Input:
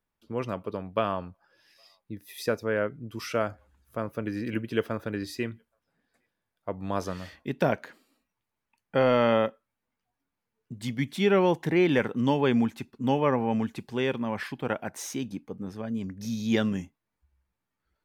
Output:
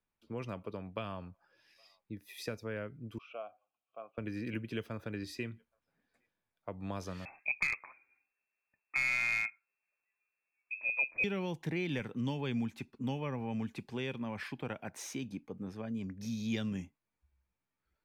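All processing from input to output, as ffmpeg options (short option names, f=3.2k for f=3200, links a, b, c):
-filter_complex "[0:a]asettb=1/sr,asplit=3[a][b][c];[a]atrim=end=3.184[d];[b]atrim=start=3.18:end=4.18,asetpts=PTS-STARTPTS,afade=t=in:d=0.004:c=qsin,afade=t=out:st=0.996:d=0.004:c=qsin,asplit=3[e][f][g];[e]bandpass=f=730:t=q:w=8,volume=0dB[h];[f]bandpass=f=1.09k:t=q:w=8,volume=-6dB[i];[g]bandpass=f=2.44k:t=q:w=8,volume=-9dB[j];[h][i][j]amix=inputs=3:normalize=0,highpass=130,equalizer=f=1.8k:t=q:w=4:g=-9,equalizer=f=3.1k:t=q:w=4:g=10,equalizer=f=4.7k:t=q:w=4:g=-9,lowpass=f=5.9k:w=0.5412,lowpass=f=5.9k:w=1.3066[k];[c]atrim=start=4.176[l];[d][k]acrossfade=d=0.004:c1=hsin:c2=qsin[m];[m][l]acrossfade=d=0.004:c1=qsin:c2=hsin,asettb=1/sr,asplit=3[n][o][p];[n]atrim=end=7.254[q];[o]atrim=start=7.25:end=11.24,asetpts=PTS-STARTPTS,afade=t=in:d=0.004:c=qsin,afade=t=out:st=3.986:d=0.004:c=qsin,lowpass=f=2.3k:t=q:w=0.5098,lowpass=f=2.3k:t=q:w=0.6013,lowpass=f=2.3k:t=q:w=0.9,lowpass=f=2.3k:t=q:w=2.563,afreqshift=-2700,aeval=exprs='clip(val(0),-1,0.126)':c=same[r];[p]atrim=start=11.236[s];[q][r]acrossfade=d=0.004:c1=hsin:c2=qsin[t];[t][s]acrossfade=d=0.004:c1=qsin:c2=hsin,highshelf=f=8.5k:g=-6.5,acrossover=split=180|3000[u][v][w];[v]acompressor=threshold=-33dB:ratio=6[x];[u][x][w]amix=inputs=3:normalize=0,equalizer=f=2.4k:w=7.4:g=6,volume=-5dB"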